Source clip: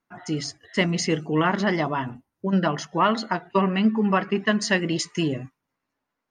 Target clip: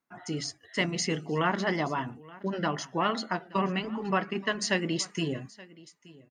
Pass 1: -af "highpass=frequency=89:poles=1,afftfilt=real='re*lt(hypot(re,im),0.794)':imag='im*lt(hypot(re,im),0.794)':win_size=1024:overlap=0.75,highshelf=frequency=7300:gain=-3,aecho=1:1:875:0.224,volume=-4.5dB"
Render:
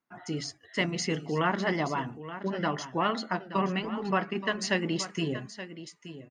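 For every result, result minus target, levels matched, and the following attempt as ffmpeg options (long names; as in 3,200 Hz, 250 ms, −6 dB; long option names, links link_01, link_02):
echo-to-direct +8.5 dB; 8,000 Hz band −2.5 dB
-af "highpass=frequency=89:poles=1,afftfilt=real='re*lt(hypot(re,im),0.794)':imag='im*lt(hypot(re,im),0.794)':win_size=1024:overlap=0.75,highshelf=frequency=7300:gain=-3,aecho=1:1:875:0.0841,volume=-4.5dB"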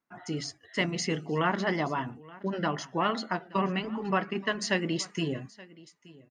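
8,000 Hz band −2.5 dB
-af "highpass=frequency=89:poles=1,afftfilt=real='re*lt(hypot(re,im),0.794)':imag='im*lt(hypot(re,im),0.794)':win_size=1024:overlap=0.75,highshelf=frequency=7300:gain=4,aecho=1:1:875:0.0841,volume=-4.5dB"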